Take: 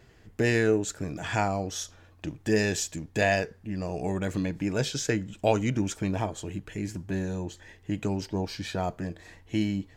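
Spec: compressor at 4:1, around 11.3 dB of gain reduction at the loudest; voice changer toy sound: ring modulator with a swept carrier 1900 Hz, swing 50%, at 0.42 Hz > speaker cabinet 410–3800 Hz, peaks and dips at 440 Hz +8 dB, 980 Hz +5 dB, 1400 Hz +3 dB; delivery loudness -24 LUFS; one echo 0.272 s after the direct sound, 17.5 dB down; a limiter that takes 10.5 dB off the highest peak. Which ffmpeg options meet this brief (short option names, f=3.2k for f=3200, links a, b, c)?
-af "acompressor=threshold=-32dB:ratio=4,alimiter=level_in=7dB:limit=-24dB:level=0:latency=1,volume=-7dB,aecho=1:1:272:0.133,aeval=exprs='val(0)*sin(2*PI*1900*n/s+1900*0.5/0.42*sin(2*PI*0.42*n/s))':c=same,highpass=410,equalizer=f=440:t=q:w=4:g=8,equalizer=f=980:t=q:w=4:g=5,equalizer=f=1.4k:t=q:w=4:g=3,lowpass=f=3.8k:w=0.5412,lowpass=f=3.8k:w=1.3066,volume=17dB"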